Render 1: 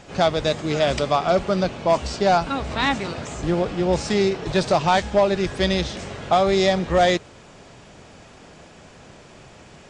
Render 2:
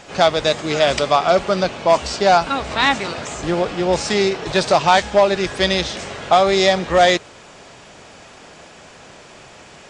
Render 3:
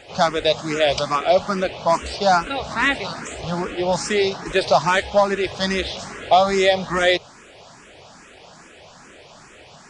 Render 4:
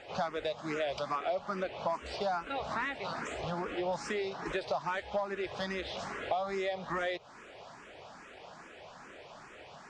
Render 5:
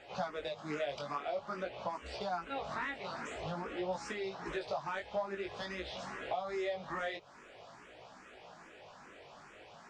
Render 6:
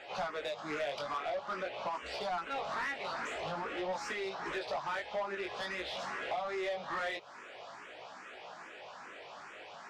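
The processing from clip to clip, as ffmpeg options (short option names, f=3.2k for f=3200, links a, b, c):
-af "lowshelf=f=330:g=-10,volume=6.5dB"
-filter_complex "[0:a]asplit=2[a][b];[b]afreqshift=2.4[c];[a][c]amix=inputs=2:normalize=1"
-filter_complex "[0:a]acompressor=threshold=-25dB:ratio=10,asplit=2[a][b];[b]highpass=f=720:p=1,volume=7dB,asoftclip=type=tanh:threshold=-14.5dB[c];[a][c]amix=inputs=2:normalize=0,lowpass=f=1.4k:p=1,volume=-6dB,volume=-4.5dB"
-af "flanger=delay=15.5:depth=5.7:speed=0.49,volume=-1dB"
-filter_complex "[0:a]asplit=2[a][b];[b]highpass=f=720:p=1,volume=17dB,asoftclip=type=tanh:threshold=-24.5dB[c];[a][c]amix=inputs=2:normalize=0,lowpass=f=4.3k:p=1,volume=-6dB,volume=-3.5dB"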